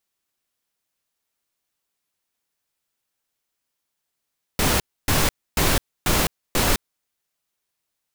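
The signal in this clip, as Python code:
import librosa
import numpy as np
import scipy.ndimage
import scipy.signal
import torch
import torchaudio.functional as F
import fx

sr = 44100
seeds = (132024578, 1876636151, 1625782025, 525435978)

y = fx.noise_burst(sr, seeds[0], colour='pink', on_s=0.21, off_s=0.28, bursts=5, level_db=-19.0)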